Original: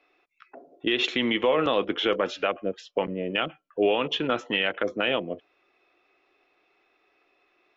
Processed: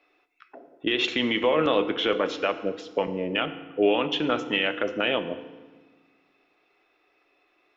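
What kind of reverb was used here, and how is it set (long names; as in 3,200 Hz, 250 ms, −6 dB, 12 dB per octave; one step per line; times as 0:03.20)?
feedback delay network reverb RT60 1.3 s, low-frequency decay 1.45×, high-frequency decay 0.8×, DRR 9.5 dB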